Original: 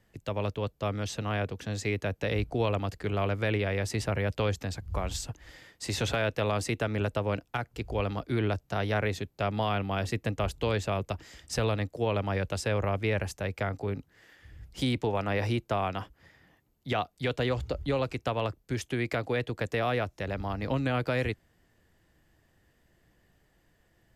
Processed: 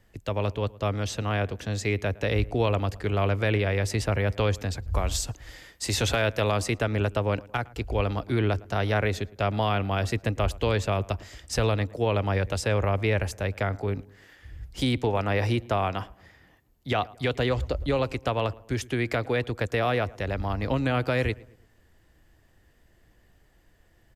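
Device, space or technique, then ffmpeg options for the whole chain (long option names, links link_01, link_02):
low shelf boost with a cut just above: -filter_complex "[0:a]asettb=1/sr,asplit=3[link_01][link_02][link_03];[link_01]atrim=end=4.934[link_04];[link_02]atrim=start=4.93:end=6.56,asetpts=PTS-STARTPTS,afade=type=in:duration=0.004:curve=qsin,afade=type=out:start_time=1.626:duration=0.004:curve=qsin,highshelf=frequency=4700:gain=5.5[link_05];[link_03]atrim=start=6.556[link_06];[link_04][link_05]acrossfade=duration=0.004:curve1=hsin:curve2=qsin[link_07];[link_07][link_06]acrossfade=duration=0.004:curve1=qsin:curve2=hsin,lowshelf=frequency=72:gain=7.5,equalizer=frequency=160:width_type=o:width=0.77:gain=-4,asplit=2[link_08][link_09];[link_09]adelay=111,lowpass=frequency=1700:poles=1,volume=-21dB,asplit=2[link_10][link_11];[link_11]adelay=111,lowpass=frequency=1700:poles=1,volume=0.46,asplit=2[link_12][link_13];[link_13]adelay=111,lowpass=frequency=1700:poles=1,volume=0.46[link_14];[link_08][link_10][link_12][link_14]amix=inputs=4:normalize=0,volume=3.5dB"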